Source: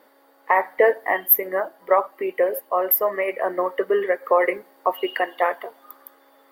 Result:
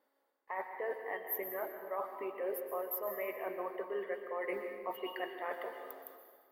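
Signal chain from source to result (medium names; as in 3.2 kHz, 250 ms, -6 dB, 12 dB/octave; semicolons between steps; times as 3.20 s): gate -50 dBFS, range -14 dB; reverse; compression 10:1, threshold -28 dBFS, peak gain reduction 18 dB; reverse; reverberation RT60 1.7 s, pre-delay 115 ms, DRR 5.5 dB; trim -8 dB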